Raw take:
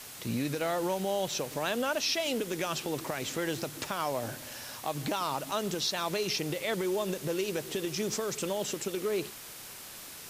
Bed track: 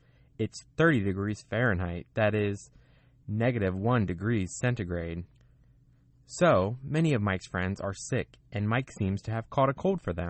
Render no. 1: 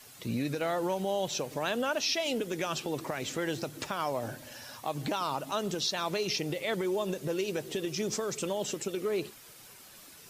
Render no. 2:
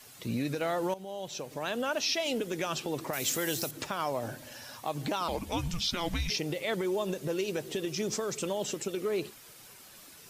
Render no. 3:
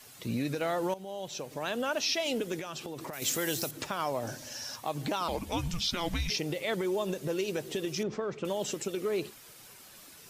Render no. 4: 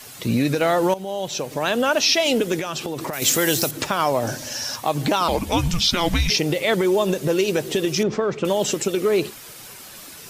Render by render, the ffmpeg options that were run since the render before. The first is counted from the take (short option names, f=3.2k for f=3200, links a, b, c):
-af "afftdn=nr=9:nf=-46"
-filter_complex "[0:a]asettb=1/sr,asplit=3[a][b][c];[a]atrim=end=3.134[d];[b]atrim=start=3.13:end=3.71,asetpts=PTS-STARTPTS,afade=t=in:d=0.004:c=qsin,afade=t=out:st=0.576:d=0.004:c=qsin,aemphasis=mode=production:type=75fm[e];[c]atrim=start=3.706[f];[d][e]acrossfade=d=0.004:c1=hsin:c2=qsin[g];[g][f]acrossfade=d=0.004:c1=qsin:c2=hsin,asettb=1/sr,asplit=3[h][i][j];[h]atrim=end=5.284[k];[i]atrim=start=5.28:end=6.3,asetpts=PTS-STARTPTS,afade=t=in:d=0.004:c=qsin,afade=t=out:st=1.016:d=0.004:c=qsin,afreqshift=-350[l];[j]atrim=start=6.296[m];[k][l]acrossfade=d=0.004:c1=hsin:c2=qsin[n];[n][m]acrossfade=d=0.004:c1=qsin:c2=hsin,asplit=2[o][p];[o]atrim=end=0.94,asetpts=PTS-STARTPTS,afade=t=out:st=0.936:d=0.004:c=hsin:silence=0.223872[q];[p]atrim=start=0.94,asetpts=PTS-STARTPTS,afade=t=in:d=1.08:silence=0.223872[r];[q][r]concat=n=2:v=0:a=1"
-filter_complex "[0:a]asettb=1/sr,asplit=3[a][b][c];[a]atrim=end=2.594[d];[b]atrim=start=2.59:end=3.22,asetpts=PTS-STARTPTS,afade=t=in:d=0.004:c=qsin,afade=t=out:st=0.626:d=0.004:c=qsin,acompressor=threshold=-35dB:ratio=6:attack=3.2:release=140:knee=1:detection=peak[e];[c]atrim=start=3.216[f];[d][e]acrossfade=d=0.004:c1=hsin:c2=qsin[g];[g][f]acrossfade=d=0.004:c1=qsin:c2=hsin,asettb=1/sr,asplit=3[h][i][j];[h]atrim=end=4.274[k];[i]atrim=start=4.27:end=4.76,asetpts=PTS-STARTPTS,afade=t=in:d=0.004:c=qsin,afade=t=out:st=0.486:d=0.004:c=qsin,equalizer=f=5.8k:w=2:g=12[l];[j]atrim=start=4.756[m];[k][l]acrossfade=d=0.004:c1=hsin:c2=qsin[n];[n][m]acrossfade=d=0.004:c1=qsin:c2=hsin,asettb=1/sr,asplit=3[o][p][q];[o]atrim=end=8.034[r];[p]atrim=start=8.03:end=8.45,asetpts=PTS-STARTPTS,afade=t=in:d=0.004:c=qsin,afade=t=out:st=0.416:d=0.004:c=qsin,lowpass=2.1k[s];[q]atrim=start=8.446[t];[r][s]acrossfade=d=0.004:c1=hsin:c2=qsin[u];[u][t]acrossfade=d=0.004:c1=qsin:c2=hsin"
-af "volume=12dB"